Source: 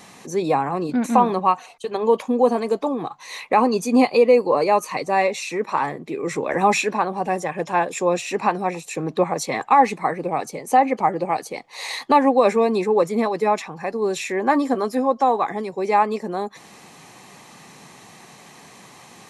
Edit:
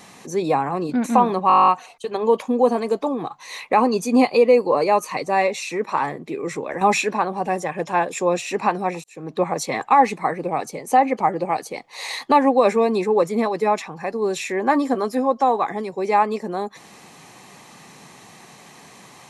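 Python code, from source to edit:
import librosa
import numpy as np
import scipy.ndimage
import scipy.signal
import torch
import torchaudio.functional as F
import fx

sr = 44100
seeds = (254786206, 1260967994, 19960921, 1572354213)

y = fx.edit(x, sr, fx.stutter(start_s=1.48, slice_s=0.02, count=11),
    fx.fade_out_to(start_s=6.12, length_s=0.49, floor_db=-7.0),
    fx.fade_in_span(start_s=8.84, length_s=0.45), tone=tone)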